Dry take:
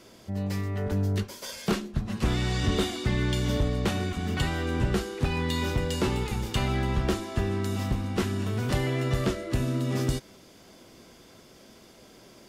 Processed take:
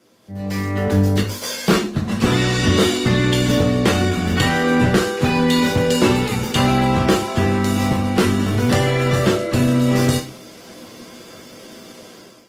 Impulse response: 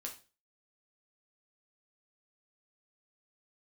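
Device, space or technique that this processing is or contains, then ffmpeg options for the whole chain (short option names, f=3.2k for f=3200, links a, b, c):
far-field microphone of a smart speaker: -filter_complex "[1:a]atrim=start_sample=2205[a];[0:a][a]afir=irnorm=-1:irlink=0,highpass=f=95:w=0.5412,highpass=f=95:w=1.3066,dynaudnorm=f=210:g=5:m=16dB" -ar 48000 -c:a libopus -b:a 20k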